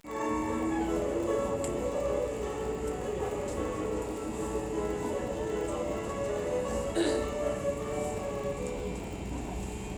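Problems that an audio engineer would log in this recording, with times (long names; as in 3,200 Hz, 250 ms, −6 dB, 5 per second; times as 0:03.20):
surface crackle 30 per second −37 dBFS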